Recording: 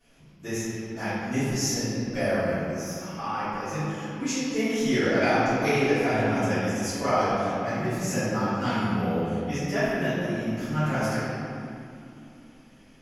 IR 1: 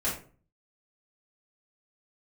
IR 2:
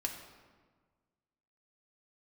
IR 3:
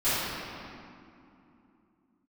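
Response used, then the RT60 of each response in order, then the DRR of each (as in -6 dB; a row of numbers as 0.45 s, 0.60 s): 3; 0.40 s, 1.5 s, 2.8 s; -9.0 dB, 0.5 dB, -17.5 dB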